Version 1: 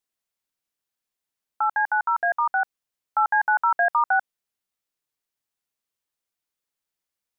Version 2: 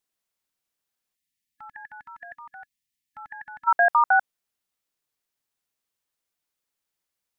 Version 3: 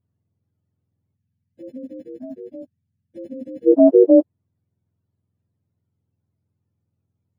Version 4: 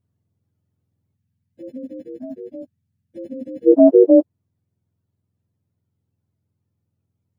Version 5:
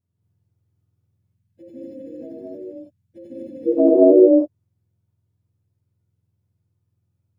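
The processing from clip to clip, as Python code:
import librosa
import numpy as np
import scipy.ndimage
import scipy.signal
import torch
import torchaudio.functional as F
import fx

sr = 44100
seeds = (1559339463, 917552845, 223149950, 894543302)

y1 = fx.spec_box(x, sr, start_s=1.16, length_s=2.51, low_hz=290.0, high_hz=1700.0, gain_db=-23)
y1 = y1 * 10.0 ** (2.0 / 20.0)
y2 = fx.octave_mirror(y1, sr, pivot_hz=670.0)
y2 = y2 * 10.0 ** (8.0 / 20.0)
y3 = fx.rider(y2, sr, range_db=10, speed_s=0.5)
y3 = y3 * 10.0 ** (3.0 / 20.0)
y4 = fx.rev_gated(y3, sr, seeds[0], gate_ms=260, shape='rising', drr_db=-6.0)
y4 = y4 * 10.0 ** (-7.5 / 20.0)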